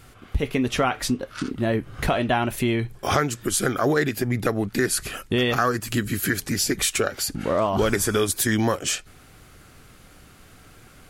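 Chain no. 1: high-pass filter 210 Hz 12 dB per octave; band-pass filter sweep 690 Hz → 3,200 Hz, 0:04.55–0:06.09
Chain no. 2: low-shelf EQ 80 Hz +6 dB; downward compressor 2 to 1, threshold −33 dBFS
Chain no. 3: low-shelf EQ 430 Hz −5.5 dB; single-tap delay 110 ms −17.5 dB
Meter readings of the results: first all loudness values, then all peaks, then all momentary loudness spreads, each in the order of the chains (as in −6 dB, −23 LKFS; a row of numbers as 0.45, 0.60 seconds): −33.0, −31.0, −25.5 LKFS; −14.0, −11.5, −7.0 dBFS; 9, 19, 6 LU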